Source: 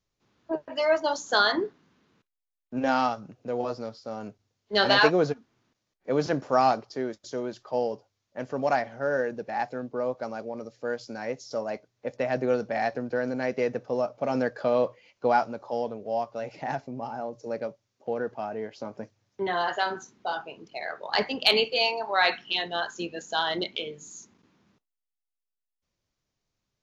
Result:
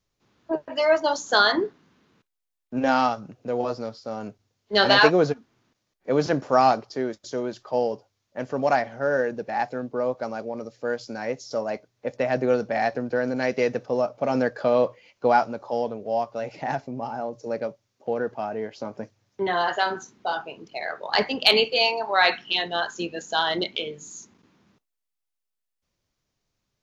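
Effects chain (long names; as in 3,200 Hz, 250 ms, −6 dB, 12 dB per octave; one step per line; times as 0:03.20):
0:13.36–0:13.86: parametric band 4,600 Hz +5 dB 2 octaves
level +3.5 dB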